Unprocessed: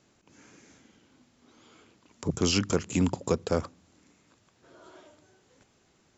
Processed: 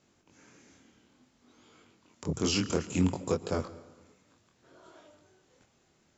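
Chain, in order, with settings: chorus 0.59 Hz, delay 20 ms, depth 6.3 ms; plate-style reverb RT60 1.3 s, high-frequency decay 0.75×, pre-delay 0.105 s, DRR 16.5 dB

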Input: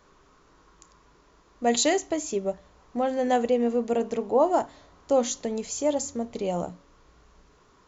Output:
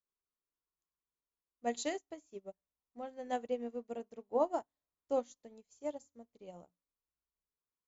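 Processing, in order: upward expander 2.5:1, over -41 dBFS; gain -8.5 dB

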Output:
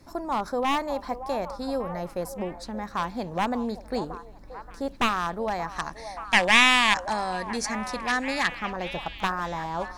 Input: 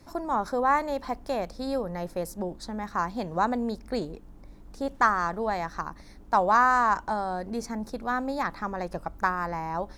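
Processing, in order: one-sided fold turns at -20 dBFS; spectral gain 5.76–8.48, 1600–11000 Hz +11 dB; delay with a stepping band-pass 0.578 s, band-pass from 730 Hz, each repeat 0.7 oct, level -9 dB

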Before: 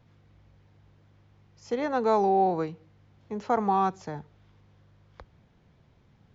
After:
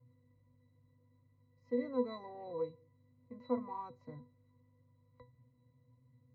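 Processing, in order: added harmonics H 5 -33 dB, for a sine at -13 dBFS; octave resonator B, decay 0.21 s; gain +2.5 dB

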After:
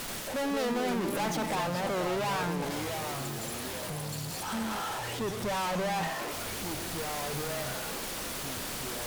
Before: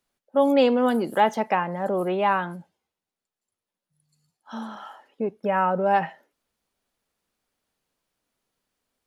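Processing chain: zero-crossing step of -29 dBFS; tube stage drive 30 dB, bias 0.5; echoes that change speed 83 ms, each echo -4 st, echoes 3, each echo -6 dB

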